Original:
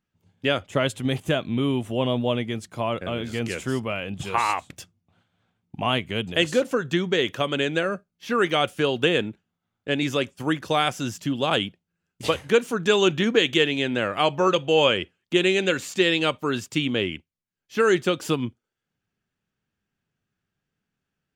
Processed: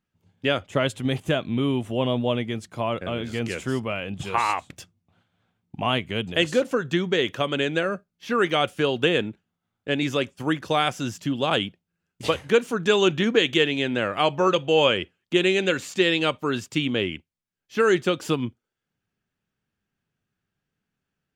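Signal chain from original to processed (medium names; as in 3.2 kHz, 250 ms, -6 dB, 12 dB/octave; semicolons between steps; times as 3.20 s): treble shelf 7.6 kHz -4.5 dB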